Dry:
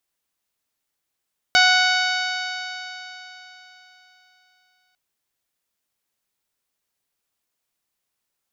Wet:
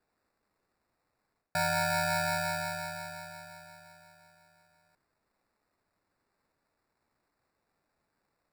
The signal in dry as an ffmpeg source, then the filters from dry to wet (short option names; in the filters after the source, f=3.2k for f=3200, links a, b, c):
-f lavfi -i "aevalsrc='0.112*pow(10,-3*t/3.75)*sin(2*PI*735.66*t)+0.178*pow(10,-3*t/3.75)*sin(2*PI*1475.28*t)+0.106*pow(10,-3*t/3.75)*sin(2*PI*2222.79*t)+0.075*pow(10,-3*t/3.75)*sin(2*PI*2982.04*t)+0.1*pow(10,-3*t/3.75)*sin(2*PI*3756.78*t)+0.1*pow(10,-3*t/3.75)*sin(2*PI*4550.64*t)+0.0501*pow(10,-3*t/3.75)*sin(2*PI*5367.1*t)+0.0316*pow(10,-3*t/3.75)*sin(2*PI*6209.46*t)+0.015*pow(10,-3*t/3.75)*sin(2*PI*7080.83*t)':d=3.4:s=44100"
-af "equalizer=f=1.4k:w=1.1:g=-9,areverse,acompressor=threshold=-26dB:ratio=12,areverse,acrusher=samples=14:mix=1:aa=0.000001"